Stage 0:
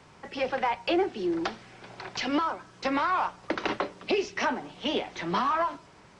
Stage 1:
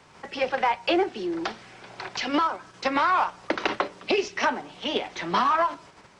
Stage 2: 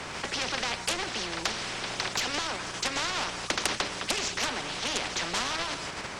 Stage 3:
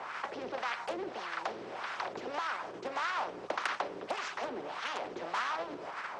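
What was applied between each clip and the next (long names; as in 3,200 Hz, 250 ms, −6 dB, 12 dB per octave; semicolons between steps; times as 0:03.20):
low-shelf EQ 360 Hz −5.5 dB; in parallel at 0 dB: output level in coarse steps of 14 dB
sine wavefolder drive 5 dB, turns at −9.5 dBFS; every bin compressed towards the loudest bin 4 to 1
LFO wah 1.7 Hz 370–1,400 Hz, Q 2; level +2.5 dB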